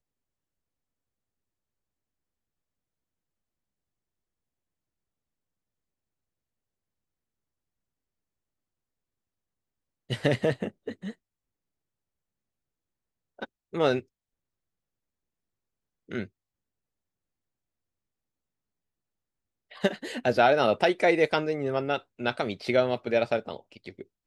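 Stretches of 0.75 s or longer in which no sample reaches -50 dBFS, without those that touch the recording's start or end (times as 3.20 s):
11.13–13.39 s
14.03–16.09 s
16.27–19.71 s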